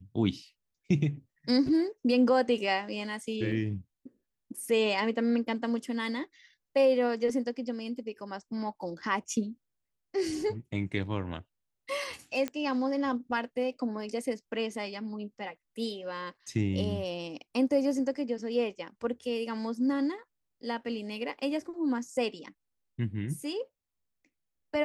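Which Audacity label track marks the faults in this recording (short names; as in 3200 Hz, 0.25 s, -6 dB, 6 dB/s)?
3.520000	3.520000	gap 4.2 ms
12.480000	12.480000	pop -19 dBFS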